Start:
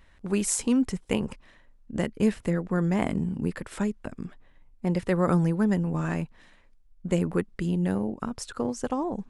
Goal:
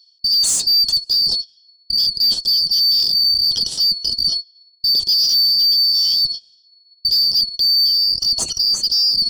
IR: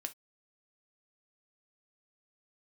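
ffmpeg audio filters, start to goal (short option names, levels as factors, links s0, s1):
-filter_complex "[0:a]afftfilt=real='real(if(lt(b,272),68*(eq(floor(b/68),0)*3+eq(floor(b/68),1)*2+eq(floor(b/68),2)*1+eq(floor(b/68),3)*0)+mod(b,68),b),0)':imag='imag(if(lt(b,272),68*(eq(floor(b/68),0)*3+eq(floor(b/68),1)*2+eq(floor(b/68),2)*1+eq(floor(b/68),3)*0)+mod(b,68),b),0)':win_size=2048:overlap=0.75,acrossover=split=630|2500[s0][s1][s2];[s0]dynaudnorm=f=760:g=3:m=6.31[s3];[s2]lowpass=7100[s4];[s3][s1][s4]amix=inputs=3:normalize=0,aexciter=amount=7.1:drive=8.8:freq=3100,asoftclip=type=tanh:threshold=0.376,equalizer=f=4900:t=o:w=0.45:g=8,agate=range=0.0501:threshold=0.1:ratio=16:detection=peak,aeval=exprs='1.12*(cos(1*acos(clip(val(0)/1.12,-1,1)))-cos(1*PI/2))+0.0708*(cos(3*acos(clip(val(0)/1.12,-1,1)))-cos(3*PI/2))+0.02*(cos(8*acos(clip(val(0)/1.12,-1,1)))-cos(8*PI/2))':c=same,highpass=f=53:p=1,lowshelf=f=490:g=10.5,areverse,acompressor=threshold=0.178:ratio=16,areverse,alimiter=limit=0.188:level=0:latency=1:release=16,volume=1.68"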